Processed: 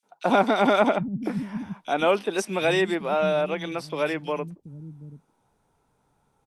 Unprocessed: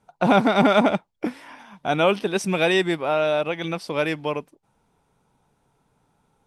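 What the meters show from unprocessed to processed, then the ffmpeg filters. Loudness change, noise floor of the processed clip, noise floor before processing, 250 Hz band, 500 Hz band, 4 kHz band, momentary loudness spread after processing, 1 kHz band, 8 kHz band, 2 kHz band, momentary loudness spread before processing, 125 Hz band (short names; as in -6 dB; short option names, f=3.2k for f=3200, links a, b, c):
-2.5 dB, -70 dBFS, -69 dBFS, -3.5 dB, -1.5 dB, -4.0 dB, 15 LU, -1.5 dB, -2.0 dB, -3.0 dB, 14 LU, -4.0 dB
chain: -filter_complex "[0:a]acrossover=split=200|2900[a][b][c];[b]adelay=30[d];[a]adelay=760[e];[e][d][c]amix=inputs=3:normalize=0,volume=-1.5dB"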